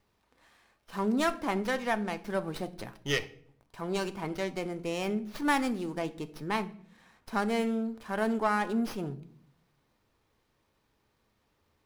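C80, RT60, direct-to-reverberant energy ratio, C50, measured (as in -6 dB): 21.0 dB, 0.60 s, 9.0 dB, 18.0 dB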